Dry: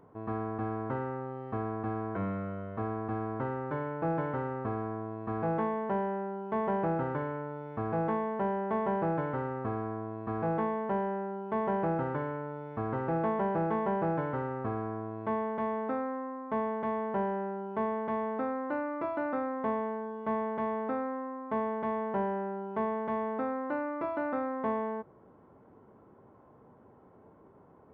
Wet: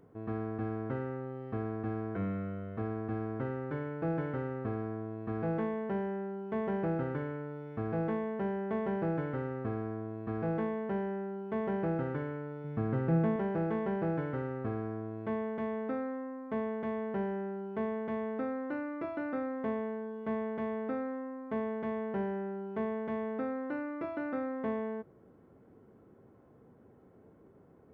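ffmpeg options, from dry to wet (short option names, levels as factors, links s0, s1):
-filter_complex "[0:a]asettb=1/sr,asplit=3[s0][s1][s2];[s0]atrim=end=12.644[s3];[s1]atrim=start=12.64:end=13.36,asetpts=PTS-STARTPTS,afade=t=in:d=0.004:c=qsin,afade=t=out:st=0.716:d=0.004:c=qsin,equalizer=f=160:w=1.5:g=8.5[s4];[s2]atrim=start=13.356[s5];[s3][s4]acrossfade=d=0.004:c1=hsin:c2=qsin[s6];[s6][s5]acrossfade=d=0.004:c1=qsin:c2=hsin,equalizer=f=960:t=o:w=0.81:g=-11,bandreject=f=600:w=18"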